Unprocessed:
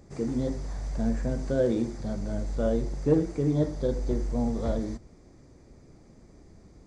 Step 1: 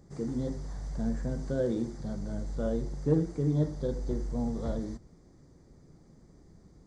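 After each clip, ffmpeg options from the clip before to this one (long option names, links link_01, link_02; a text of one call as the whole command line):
ffmpeg -i in.wav -af "equalizer=frequency=160:width_type=o:width=0.33:gain=7,equalizer=frequency=630:width_type=o:width=0.33:gain=-3,equalizer=frequency=2500:width_type=o:width=0.33:gain=-10,volume=-4.5dB" out.wav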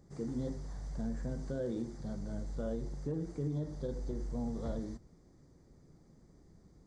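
ffmpeg -i in.wav -af "alimiter=limit=-23.5dB:level=0:latency=1:release=108,volume=-4.5dB" out.wav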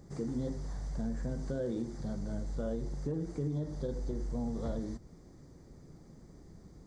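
ffmpeg -i in.wav -af "acompressor=threshold=-48dB:ratio=1.5,volume=7dB" out.wav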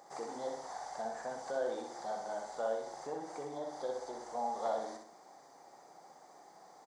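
ffmpeg -i in.wav -filter_complex "[0:a]highpass=frequency=780:width_type=q:width=4.4,asplit=2[link_01][link_02];[link_02]aecho=0:1:63|126|189|252|315:0.562|0.236|0.0992|0.0417|0.0175[link_03];[link_01][link_03]amix=inputs=2:normalize=0,volume=3dB" out.wav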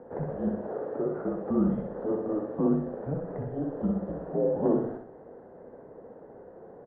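ffmpeg -i in.wav -af "equalizer=frequency=250:width_type=o:width=1:gain=7,equalizer=frequency=500:width_type=o:width=1:gain=8,equalizer=frequency=1000:width_type=o:width=1:gain=8,highpass=frequency=450:width_type=q:width=0.5412,highpass=frequency=450:width_type=q:width=1.307,lowpass=frequency=2400:width_type=q:width=0.5176,lowpass=frequency=2400:width_type=q:width=0.7071,lowpass=frequency=2400:width_type=q:width=1.932,afreqshift=-310,volume=1.5dB" out.wav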